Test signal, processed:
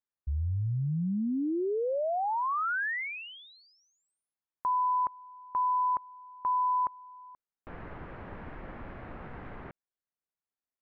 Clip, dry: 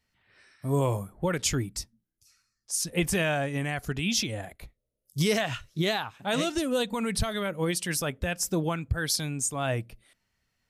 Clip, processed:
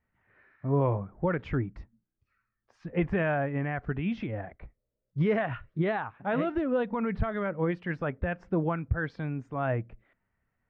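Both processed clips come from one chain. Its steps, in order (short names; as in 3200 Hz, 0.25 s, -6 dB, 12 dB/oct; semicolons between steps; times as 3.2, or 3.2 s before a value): LPF 1900 Hz 24 dB/oct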